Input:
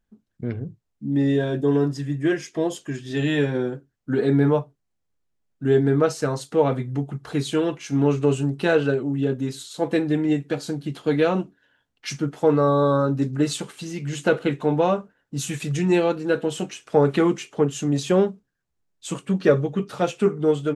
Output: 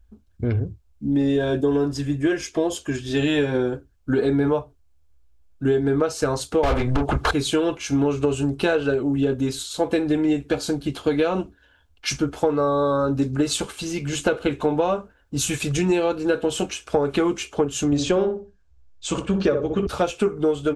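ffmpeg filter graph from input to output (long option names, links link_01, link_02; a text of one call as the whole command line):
ffmpeg -i in.wav -filter_complex "[0:a]asettb=1/sr,asplit=3[link_01][link_02][link_03];[link_01]atrim=end=6.634[link_04];[link_02]atrim=start=6.63:end=7.31,asetpts=PTS-STARTPTS,afade=type=in:duration=0.004:curve=qsin,afade=type=out:start_time=0.676:duration=0.004:curve=qsin,highpass=43,asplit=2[link_05][link_06];[link_06]highpass=frequency=720:poles=1,volume=33dB,asoftclip=type=tanh:threshold=-9.5dB[link_07];[link_05][link_07]amix=inputs=2:normalize=0,lowpass=frequency=2200:poles=1,volume=-6dB[link_08];[link_03]atrim=start=7.306[link_09];[link_04][link_08]acrossfade=duration=0.004:curve1=hsin:curve2=qsin[link_10];[link_10][link_09]acrossfade=duration=0.004:curve1=qsin:curve2=hsin,asettb=1/sr,asplit=3[link_11][link_12][link_13];[link_11]atrim=end=17.864[link_14];[link_12]atrim=start=17.86:end=19.87,asetpts=PTS-STARTPTS,afade=type=in:duration=0.004:curve=qsin,afade=type=out:start_time=2.006:duration=0.004:curve=qsin,lowpass=frequency=7600:width=0.5412,lowpass=frequency=7600:width=1.3066,asplit=2[link_15][link_16];[link_16]adelay=62,lowpass=frequency=810:poles=1,volume=-4dB,asplit=2[link_17][link_18];[link_18]adelay=62,lowpass=frequency=810:poles=1,volume=0.27,asplit=2[link_19][link_20];[link_20]adelay=62,lowpass=frequency=810:poles=1,volume=0.27,asplit=2[link_21][link_22];[link_22]adelay=62,lowpass=frequency=810:poles=1,volume=0.27[link_23];[link_15][link_17][link_19][link_21][link_23]amix=inputs=5:normalize=0,atrim=end_sample=88641[link_24];[link_13]atrim=start=19.866[link_25];[link_14][link_24]acrossfade=duration=0.004:curve1=hsin:curve2=qsin[link_26];[link_26][link_25]acrossfade=duration=0.004:curve1=qsin:curve2=hsin,lowshelf=frequency=100:width_type=q:width=3:gain=13.5,bandreject=frequency=1900:width=7.4,acompressor=threshold=-23dB:ratio=10,volume=6.5dB" out.wav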